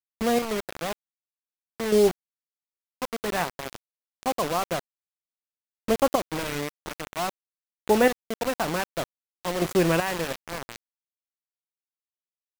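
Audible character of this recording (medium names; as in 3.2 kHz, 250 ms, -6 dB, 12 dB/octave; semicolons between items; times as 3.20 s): chopped level 0.52 Hz, depth 65%, duty 20%; a quantiser's noise floor 6-bit, dither none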